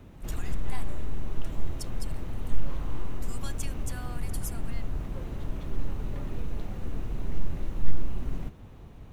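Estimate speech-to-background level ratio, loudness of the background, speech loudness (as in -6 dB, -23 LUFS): -7.0 dB, -38.0 LUFS, -45.0 LUFS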